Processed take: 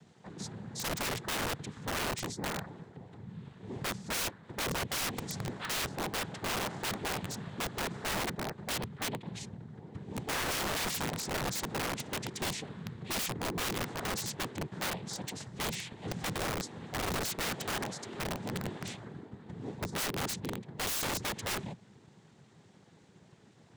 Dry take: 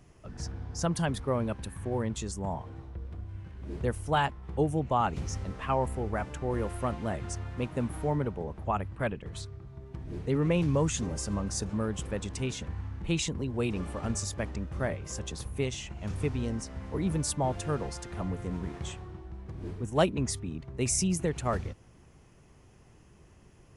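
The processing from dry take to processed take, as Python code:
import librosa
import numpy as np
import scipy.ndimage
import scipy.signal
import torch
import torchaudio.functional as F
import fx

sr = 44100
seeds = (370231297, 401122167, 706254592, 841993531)

y = fx.noise_vocoder(x, sr, seeds[0], bands=6)
y = (np.mod(10.0 ** (28.5 / 20.0) * y + 1.0, 2.0) - 1.0) / 10.0 ** (28.5 / 20.0)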